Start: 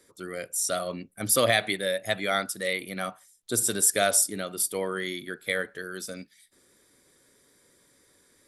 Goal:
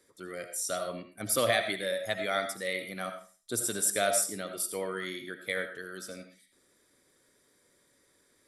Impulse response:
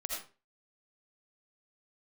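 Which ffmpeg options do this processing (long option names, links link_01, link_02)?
-filter_complex "[0:a]asplit=2[link_01][link_02];[1:a]atrim=start_sample=2205,lowshelf=frequency=180:gain=-7.5,highshelf=frequency=4800:gain=-7.5[link_03];[link_02][link_03]afir=irnorm=-1:irlink=0,volume=-2dB[link_04];[link_01][link_04]amix=inputs=2:normalize=0,volume=-8.5dB"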